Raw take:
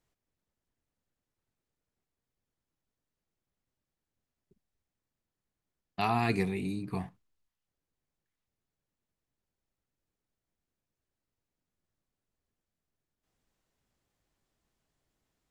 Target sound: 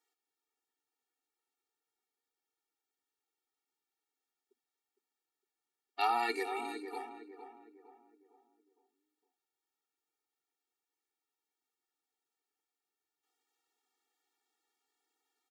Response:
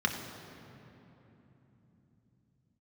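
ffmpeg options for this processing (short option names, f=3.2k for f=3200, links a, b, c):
-filter_complex "[0:a]highpass=550,asplit=2[a][b];[b]adelay=459,lowpass=f=1.4k:p=1,volume=-8.5dB,asplit=2[c][d];[d]adelay=459,lowpass=f=1.4k:p=1,volume=0.43,asplit=2[e][f];[f]adelay=459,lowpass=f=1.4k:p=1,volume=0.43,asplit=2[g][h];[h]adelay=459,lowpass=f=1.4k:p=1,volume=0.43,asplit=2[i][j];[j]adelay=459,lowpass=f=1.4k:p=1,volume=0.43[k];[a][c][e][g][i][k]amix=inputs=6:normalize=0,afftfilt=real='re*eq(mod(floor(b*sr/1024/240),2),1)':imag='im*eq(mod(floor(b*sr/1024/240),2),1)':win_size=1024:overlap=0.75,volume=3dB"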